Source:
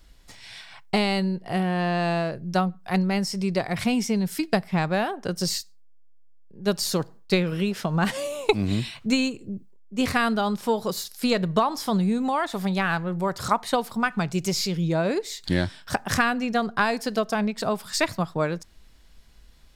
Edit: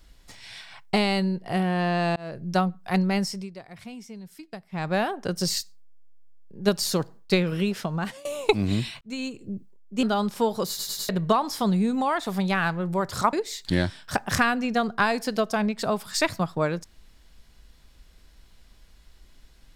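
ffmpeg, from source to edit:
ffmpeg -i in.wav -filter_complex "[0:a]asplit=14[link_01][link_02][link_03][link_04][link_05][link_06][link_07][link_08][link_09][link_10][link_11][link_12][link_13][link_14];[link_01]atrim=end=2.16,asetpts=PTS-STARTPTS,afade=type=out:start_time=2.156:duration=0.004:curve=hsin[link_15];[link_02]atrim=start=2.16:end=3.5,asetpts=PTS-STARTPTS,afade=type=in:duration=0.26,afade=type=out:start_time=1.07:duration=0.27:silence=0.141254[link_16];[link_03]atrim=start=3.5:end=4.69,asetpts=PTS-STARTPTS,volume=-17dB[link_17];[link_04]atrim=start=4.69:end=5.572,asetpts=PTS-STARTPTS,afade=type=in:duration=0.27:silence=0.141254[link_18];[link_05]atrim=start=5.568:end=6.692,asetpts=PTS-STARTPTS,volume=3dB[link_19];[link_06]atrim=start=6.688:end=8.25,asetpts=PTS-STARTPTS,afade=type=out:start_time=1.022:duration=0.54:silence=0.0944061[link_20];[link_07]atrim=start=8.25:end=9.01,asetpts=PTS-STARTPTS,afade=type=in:duration=0.004:curve=hsin:silence=0.0944061,afade=type=out:start_time=0.756:duration=0.004:curve=hsin[link_21];[link_08]atrim=start=9.01:end=10.032,asetpts=PTS-STARTPTS,afade=type=in:duration=0.52[link_22];[link_09]atrim=start=10.298:end=11.062[link_23];[link_10]atrim=start=10.958:end=11.062[link_24];[link_11]atrim=start=10.958:end=11.062[link_25];[link_12]atrim=start=10.958:end=11.062[link_26];[link_13]atrim=start=11.358:end=13.602[link_27];[link_14]atrim=start=15.118[link_28];[link_15][link_16][link_17][link_18]concat=n=4:v=0:a=1[link_29];[link_29][link_19]acrossfade=duration=0.004:curve1=hsin:curve2=hsin[link_30];[link_20][link_21][link_22]concat=n=3:v=0:a=1[link_31];[link_30][link_31]acrossfade=duration=0.004:curve1=hsin:curve2=hsin[link_32];[link_32][link_23]acrossfade=duration=0.004:curve1=hsin:curve2=hsin[link_33];[link_33][link_24]acrossfade=duration=0.004:curve1=hsin:curve2=hsin[link_34];[link_34][link_25]acrossfade=duration=0.004:curve1=hsin:curve2=hsin[link_35];[link_35][link_26]acrossfade=duration=0.004:curve1=hsin:curve2=hsin[link_36];[link_36][link_27]acrossfade=duration=0.004:curve1=hsin:curve2=hsin[link_37];[link_37][link_28]acrossfade=duration=0.004:curve1=hsin:curve2=hsin" out.wav

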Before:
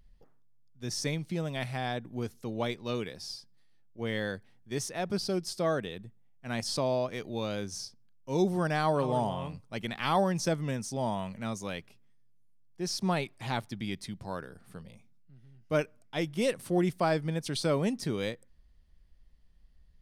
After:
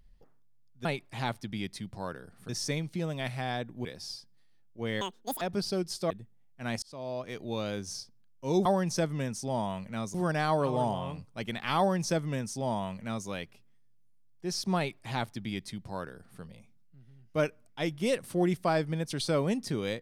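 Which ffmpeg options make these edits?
ffmpeg -i in.wav -filter_complex "[0:a]asplit=10[link_01][link_02][link_03][link_04][link_05][link_06][link_07][link_08][link_09][link_10];[link_01]atrim=end=0.852[link_11];[link_02]atrim=start=13.128:end=14.772[link_12];[link_03]atrim=start=0.848:end=2.212[link_13];[link_04]atrim=start=3.048:end=4.214[link_14];[link_05]atrim=start=4.21:end=4.98,asetpts=PTS-STARTPTS,asetrate=84231,aresample=44100[link_15];[link_06]atrim=start=4.976:end=5.672[link_16];[link_07]atrim=start=5.948:end=6.67,asetpts=PTS-STARTPTS,afade=type=out:start_time=0.718:duration=0.004:curve=hsin[link_17];[link_08]atrim=start=6.67:end=8.502,asetpts=PTS-STARTPTS,afade=type=in:duration=0.65[link_18];[link_09]atrim=start=10.138:end=11.632[link_19];[link_10]atrim=start=8.498[link_20];[link_11][link_12]acrossfade=duration=0.004:curve1=hsin:curve2=hsin[link_21];[link_21][link_13]acrossfade=duration=0.004:curve1=hsin:curve2=hsin[link_22];[link_22][link_14]acrossfade=duration=0.004:curve1=hsin:curve2=hsin[link_23];[link_23][link_15]acrossfade=duration=0.004:curve1=hsin:curve2=hsin[link_24];[link_24][link_16]acrossfade=duration=0.004:curve1=hsin:curve2=hsin[link_25];[link_17][link_18]concat=n=2:v=0:a=1[link_26];[link_25][link_26]acrossfade=duration=0.004:curve1=hsin:curve2=hsin[link_27];[link_27][link_19]acrossfade=duration=0.004:curve1=hsin:curve2=hsin[link_28];[link_28][link_20]acrossfade=duration=0.004:curve1=hsin:curve2=hsin" out.wav

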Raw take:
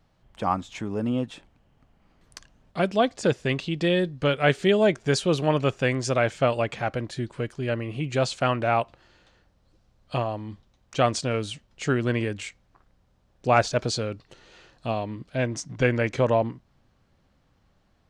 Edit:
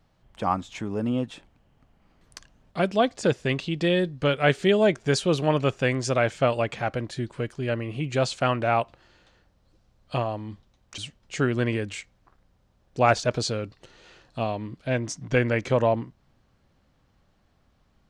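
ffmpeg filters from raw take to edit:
ffmpeg -i in.wav -filter_complex "[0:a]asplit=2[link_01][link_02];[link_01]atrim=end=10.982[link_03];[link_02]atrim=start=11.458[link_04];[link_03][link_04]acrossfade=duration=0.004:curve1=hsin:curve2=hsin" out.wav

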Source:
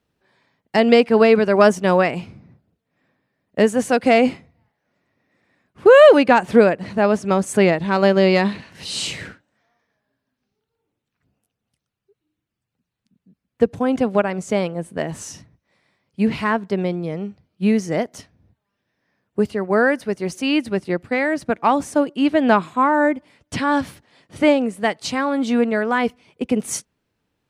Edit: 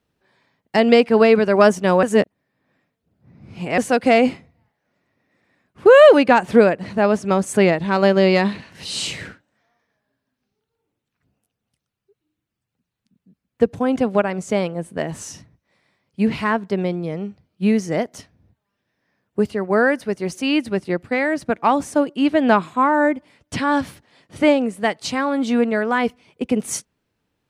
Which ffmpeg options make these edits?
ffmpeg -i in.wav -filter_complex "[0:a]asplit=3[link_01][link_02][link_03];[link_01]atrim=end=2.032[link_04];[link_02]atrim=start=2.028:end=3.782,asetpts=PTS-STARTPTS,areverse[link_05];[link_03]atrim=start=3.778[link_06];[link_04][link_05]acrossfade=duration=0.004:curve1=hsin:curve2=hsin[link_07];[link_07][link_06]acrossfade=duration=0.004:curve1=hsin:curve2=hsin" out.wav

